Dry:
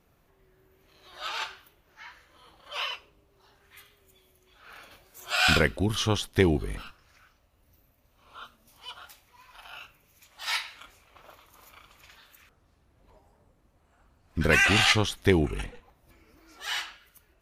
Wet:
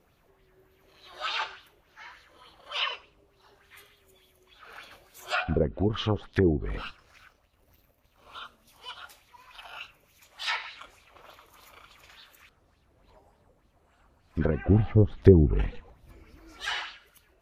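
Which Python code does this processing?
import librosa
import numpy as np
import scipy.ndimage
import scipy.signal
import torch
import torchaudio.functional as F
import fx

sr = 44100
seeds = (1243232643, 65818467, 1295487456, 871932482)

y = fx.env_lowpass_down(x, sr, base_hz=390.0, full_db=-19.0)
y = fx.leveller(y, sr, passes=1, at=(6.65, 8.39))
y = fx.low_shelf(y, sr, hz=240.0, db=10.5, at=(14.66, 16.75))
y = fx.bell_lfo(y, sr, hz=3.4, low_hz=410.0, high_hz=4100.0, db=9)
y = y * 10.0 ** (-1.0 / 20.0)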